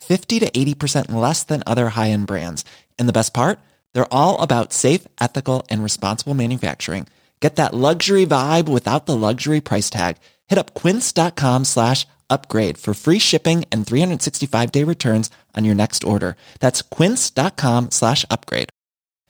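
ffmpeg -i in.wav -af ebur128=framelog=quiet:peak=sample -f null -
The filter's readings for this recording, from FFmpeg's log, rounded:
Integrated loudness:
  I:         -18.3 LUFS
  Threshold: -28.4 LUFS
Loudness range:
  LRA:         2.3 LU
  Threshold: -38.4 LUFS
  LRA low:   -19.7 LUFS
  LRA high:  -17.4 LUFS
Sample peak:
  Peak:       -2.2 dBFS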